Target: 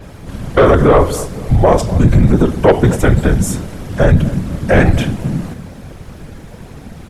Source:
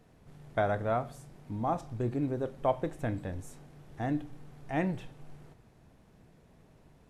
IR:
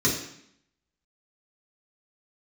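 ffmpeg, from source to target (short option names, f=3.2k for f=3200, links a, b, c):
-filter_complex "[0:a]afreqshift=-180,afftfilt=real='hypot(re,im)*cos(2*PI*random(0))':imag='hypot(re,im)*sin(2*PI*random(1))':win_size=512:overlap=0.75,asoftclip=type=tanh:threshold=-30dB,asplit=2[a][b];[b]adelay=247,lowpass=f=1.1k:p=1,volume=-19dB,asplit=2[c][d];[d]adelay=247,lowpass=f=1.1k:p=1,volume=0.48,asplit=2[e][f];[f]adelay=247,lowpass=f=1.1k:p=1,volume=0.48,asplit=2[g][h];[h]adelay=247,lowpass=f=1.1k:p=1,volume=0.48[i];[c][e][g][i]amix=inputs=4:normalize=0[j];[a][j]amix=inputs=2:normalize=0,alimiter=level_in=34.5dB:limit=-1dB:release=50:level=0:latency=1,adynamicequalizer=threshold=0.0251:dfrequency=4800:dqfactor=0.7:tfrequency=4800:tqfactor=0.7:attack=5:release=100:ratio=0.375:range=1.5:mode=boostabove:tftype=highshelf,volume=-1dB"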